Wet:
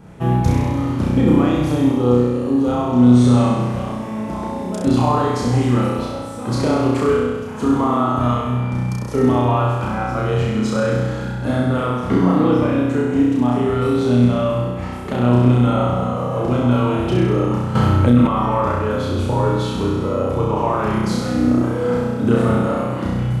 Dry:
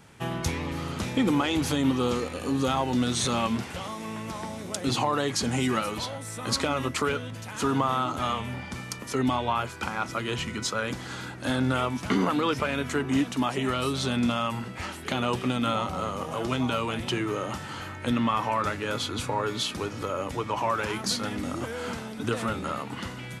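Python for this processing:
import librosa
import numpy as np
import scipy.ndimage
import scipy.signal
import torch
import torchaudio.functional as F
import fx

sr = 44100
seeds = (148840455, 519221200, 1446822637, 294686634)

p1 = fx.high_shelf(x, sr, hz=11000.0, db=5.0)
p2 = p1 + fx.room_flutter(p1, sr, wall_m=5.6, rt60_s=1.3, dry=0)
p3 = fx.rider(p2, sr, range_db=4, speed_s=2.0)
p4 = fx.tilt_shelf(p3, sr, db=9.5, hz=1300.0)
p5 = fx.env_flatten(p4, sr, amount_pct=70, at=(17.75, 18.27))
y = p5 * librosa.db_to_amplitude(-1.5)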